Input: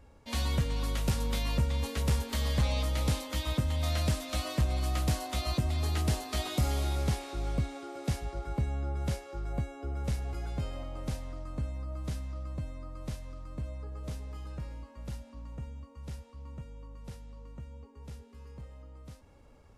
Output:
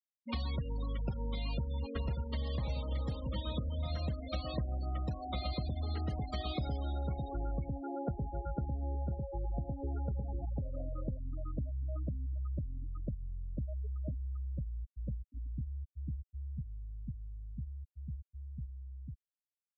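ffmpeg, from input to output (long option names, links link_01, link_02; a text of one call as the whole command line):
ffmpeg -i in.wav -filter_complex "[0:a]asplit=2[link_01][link_02];[link_02]afade=type=in:start_time=1.36:duration=0.01,afade=type=out:start_time=2.51:duration=0.01,aecho=0:1:590|1180|1770|2360|2950|3540|4130|4720|5310|5900|6490|7080:0.530884|0.371619|0.260133|0.182093|0.127465|0.0892257|0.062458|0.0437206|0.0306044|0.0214231|0.0149962|0.0104973[link_03];[link_01][link_03]amix=inputs=2:normalize=0,asettb=1/sr,asplit=3[link_04][link_05][link_06];[link_04]atrim=end=5.314[link_07];[link_05]atrim=start=5.31:end=10.45,asetpts=PTS-STARTPTS,afade=type=in:duration=0.004:curve=qsin,afade=type=out:start_time=5.136:duration=0.004:curve=qsin,aecho=1:1:112:0.668,atrim=end_sample=226674[link_08];[link_06]atrim=start=10.446[link_09];[link_07][link_08]acrossfade=duration=0.004:curve1=hsin:curve2=qsin[link_10];[link_10][link_09]acrossfade=duration=0.004:curve1=qsin:curve2=hsin,afftfilt=real='re*gte(hypot(re,im),0.0282)':imag='im*gte(hypot(re,im),0.0282)':win_size=1024:overlap=0.75,acompressor=threshold=-37dB:ratio=6,volume=3.5dB" out.wav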